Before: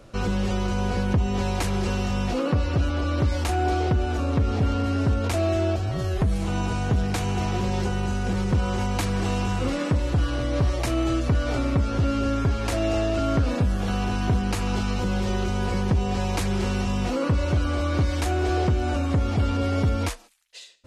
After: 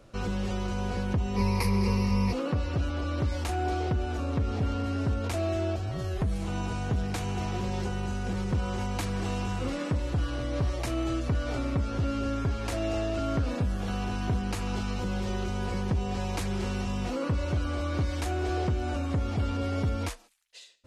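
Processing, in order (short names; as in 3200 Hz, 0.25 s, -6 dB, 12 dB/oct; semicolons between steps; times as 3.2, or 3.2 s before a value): 1.36–2.33 ripple EQ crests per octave 0.87, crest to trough 16 dB; gain -6 dB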